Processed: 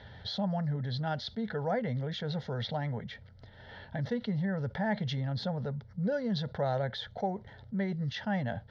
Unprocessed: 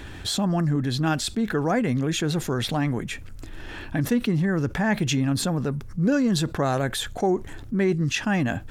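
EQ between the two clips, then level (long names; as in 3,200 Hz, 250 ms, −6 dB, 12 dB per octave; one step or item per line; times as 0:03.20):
loudspeaker in its box 130–5,000 Hz, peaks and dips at 160 Hz −5 dB, 270 Hz −9 dB, 730 Hz −6 dB, 1,600 Hz −8 dB
high-shelf EQ 2,000 Hz −10 dB
phaser with its sweep stopped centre 1,700 Hz, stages 8
0.0 dB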